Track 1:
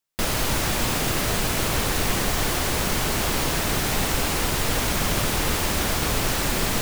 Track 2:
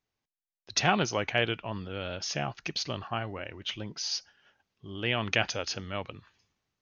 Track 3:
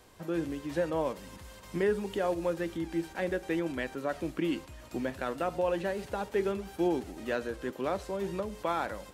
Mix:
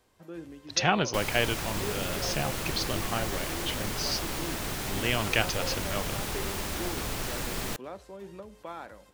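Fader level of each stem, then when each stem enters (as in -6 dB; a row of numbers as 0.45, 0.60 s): -10.0, +0.5, -9.5 dB; 0.95, 0.00, 0.00 s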